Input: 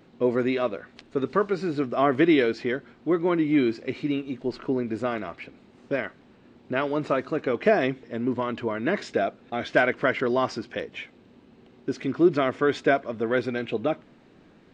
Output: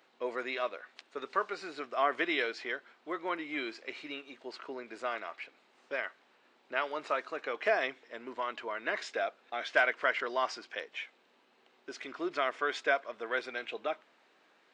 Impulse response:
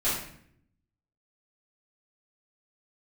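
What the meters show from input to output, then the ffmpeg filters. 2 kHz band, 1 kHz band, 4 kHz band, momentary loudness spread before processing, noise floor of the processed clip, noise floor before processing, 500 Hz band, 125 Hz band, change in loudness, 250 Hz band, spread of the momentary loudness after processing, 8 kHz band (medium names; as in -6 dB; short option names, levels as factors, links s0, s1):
-3.0 dB, -5.0 dB, -3.0 dB, 11 LU, -68 dBFS, -55 dBFS, -11.0 dB, under -30 dB, -9.0 dB, -19.5 dB, 14 LU, no reading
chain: -af "highpass=780,volume=0.708"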